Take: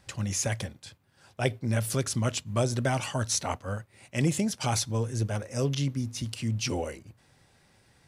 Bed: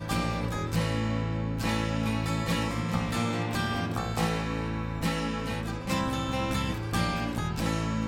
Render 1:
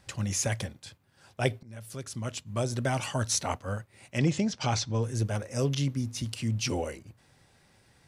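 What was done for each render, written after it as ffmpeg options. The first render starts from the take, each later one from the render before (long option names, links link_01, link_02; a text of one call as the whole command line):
ffmpeg -i in.wav -filter_complex "[0:a]asettb=1/sr,asplit=3[link_01][link_02][link_03];[link_01]atrim=end=4.184[link_04];[link_02]atrim=start=4.18:end=5.03,asetpts=PTS-STARTPTS,afade=type=in:duration=0.004:curve=qsin,afade=type=out:start_time=0.846:duration=0.004:curve=qsin,lowpass=frequency=6200:width=0.5412,lowpass=frequency=6200:width=1.3066[link_05];[link_03]atrim=start=5.026[link_06];[link_04][link_05]acrossfade=duration=0.004:curve1=hsin:curve2=qsin[link_07];[link_07][link_06]acrossfade=duration=0.004:curve1=qsin:curve2=hsin,asplit=2[link_08][link_09];[link_08]atrim=end=1.63,asetpts=PTS-STARTPTS,afade=type=out:start_time=1.626:duration=0.004:curve=hsin:silence=0.0630957[link_10];[link_09]atrim=start=1.63,asetpts=PTS-STARTPTS,afade=type=in:duration=1.53:silence=0.0630957[link_11];[link_10][link_11]concat=n=2:v=0:a=1" out.wav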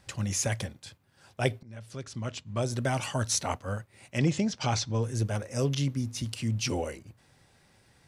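ffmpeg -i in.wav -filter_complex "[0:a]asplit=3[link_01][link_02][link_03];[link_01]afade=type=out:start_time=1.62:duration=0.02[link_04];[link_02]lowpass=5800,afade=type=in:start_time=1.62:duration=0.02,afade=type=out:start_time=2.61:duration=0.02[link_05];[link_03]afade=type=in:start_time=2.61:duration=0.02[link_06];[link_04][link_05][link_06]amix=inputs=3:normalize=0" out.wav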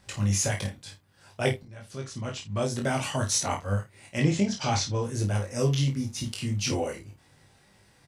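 ffmpeg -i in.wav -filter_complex "[0:a]asplit=2[link_01][link_02];[link_02]adelay=30,volume=-8dB[link_03];[link_01][link_03]amix=inputs=2:normalize=0,aecho=1:1:20|51:0.668|0.355" out.wav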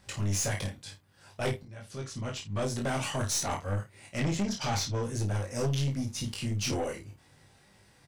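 ffmpeg -i in.wav -af "aeval=exprs='(tanh(17.8*val(0)+0.3)-tanh(0.3))/17.8':channel_layout=same" out.wav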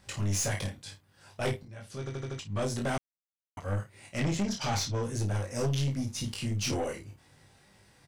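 ffmpeg -i in.wav -filter_complex "[0:a]asplit=8[link_01][link_02][link_03][link_04][link_05][link_06][link_07][link_08];[link_01]atrim=end=2.072[link_09];[link_02]atrim=start=1.988:end=2.072[link_10];[link_03]atrim=start=1.988:end=2.072[link_11];[link_04]atrim=start=1.988:end=2.072[link_12];[link_05]atrim=start=1.988:end=2.072[link_13];[link_06]atrim=start=2.388:end=2.98,asetpts=PTS-STARTPTS,afade=type=out:start_time=0.588:duration=0.004:curve=hsin[link_14];[link_07]atrim=start=2.98:end=3.57,asetpts=PTS-STARTPTS,volume=0[link_15];[link_08]atrim=start=3.57,asetpts=PTS-STARTPTS,afade=type=in:duration=0.004:curve=hsin[link_16];[link_09][link_10]acrossfade=duration=0.004:curve1=hsin:curve2=hsin[link_17];[link_17][link_11]acrossfade=duration=0.004:curve1=hsin:curve2=hsin[link_18];[link_18][link_12]acrossfade=duration=0.004:curve1=hsin:curve2=hsin[link_19];[link_19][link_13]acrossfade=duration=0.004:curve1=hsin:curve2=hsin[link_20];[link_14][link_15][link_16]concat=n=3:v=0:a=1[link_21];[link_20][link_21]acrossfade=duration=0.004:curve1=hsin:curve2=hsin" out.wav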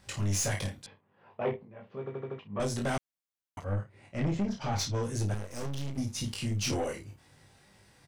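ffmpeg -i in.wav -filter_complex "[0:a]asettb=1/sr,asplit=3[link_01][link_02][link_03];[link_01]atrim=end=0.864[link_04];[link_02]atrim=start=0.86:end=2.6,asetpts=PTS-STARTPTS,afade=type=in:duration=0.004:curve=qsin,afade=type=out:start_time=1.736:duration=0.004:curve=qsin,highpass=190,equalizer=frequency=210:width_type=q:width=4:gain=4,equalizer=frequency=300:width_type=q:width=4:gain=-5,equalizer=frequency=440:width_type=q:width=4:gain=6,equalizer=frequency=1000:width_type=q:width=4:gain=4,equalizer=frequency=1500:width_type=q:width=4:gain=-8,equalizer=frequency=2100:width_type=q:width=4:gain=-4,lowpass=frequency=2300:width=0.5412,lowpass=frequency=2300:width=1.3066[link_05];[link_03]atrim=start=2.596[link_06];[link_04][link_05]acrossfade=duration=0.004:curve1=hsin:curve2=qsin[link_07];[link_07][link_06]acrossfade=duration=0.004:curve1=qsin:curve2=hsin,asplit=3[link_08][link_09][link_10];[link_08]afade=type=out:start_time=3.63:duration=0.02[link_11];[link_09]lowpass=frequency=1200:poles=1,afade=type=in:start_time=3.63:duration=0.02,afade=type=out:start_time=4.78:duration=0.02[link_12];[link_10]afade=type=in:start_time=4.78:duration=0.02[link_13];[link_11][link_12][link_13]amix=inputs=3:normalize=0,asettb=1/sr,asplit=3[link_14][link_15][link_16];[link_14]atrim=end=5.344[link_17];[link_15]atrim=start=5.34:end=5.98,asetpts=PTS-STARTPTS,afade=type=in:duration=0.004:curve=qsin,afade=type=out:start_time=0.636:duration=0.004:curve=qsin,aeval=exprs='max(val(0),0)':channel_layout=same[link_18];[link_16]atrim=start=5.976[link_19];[link_17][link_18]acrossfade=duration=0.004:curve1=hsin:curve2=qsin[link_20];[link_20][link_19]acrossfade=duration=0.004:curve1=qsin:curve2=hsin" out.wav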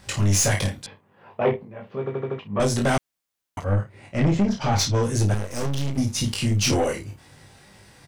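ffmpeg -i in.wav -af "volume=10dB" out.wav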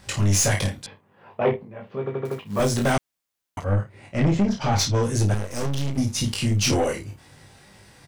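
ffmpeg -i in.wav -filter_complex "[0:a]asettb=1/sr,asplit=3[link_01][link_02][link_03];[link_01]atrim=end=2.254[link_04];[link_02]atrim=start=2.25:end=2.93,asetpts=PTS-STARTPTS,afade=type=in:duration=0.004:curve=qsin,afade=type=out:start_time=0.676:duration=0.004:curve=qsin,acrusher=bits=5:mode=log:mix=0:aa=0.000001[link_05];[link_03]atrim=start=2.926[link_06];[link_04][link_05]acrossfade=duration=0.004:curve1=hsin:curve2=qsin[link_07];[link_07][link_06]acrossfade=duration=0.004:curve1=qsin:curve2=hsin" out.wav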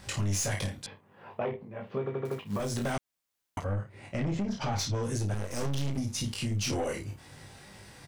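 ffmpeg -i in.wav -af "acompressor=threshold=-22dB:ratio=6,alimiter=limit=-23.5dB:level=0:latency=1:release=491" out.wav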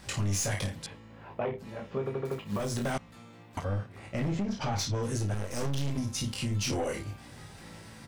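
ffmpeg -i in.wav -i bed.wav -filter_complex "[1:a]volume=-22.5dB[link_01];[0:a][link_01]amix=inputs=2:normalize=0" out.wav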